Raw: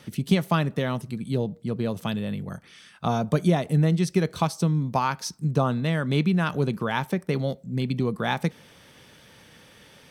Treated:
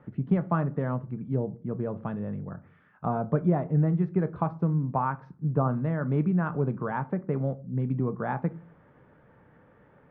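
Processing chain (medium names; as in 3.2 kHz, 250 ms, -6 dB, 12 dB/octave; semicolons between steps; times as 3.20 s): low-pass 1.5 kHz 24 dB/octave; simulated room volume 140 m³, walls furnished, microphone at 0.41 m; trim -3.5 dB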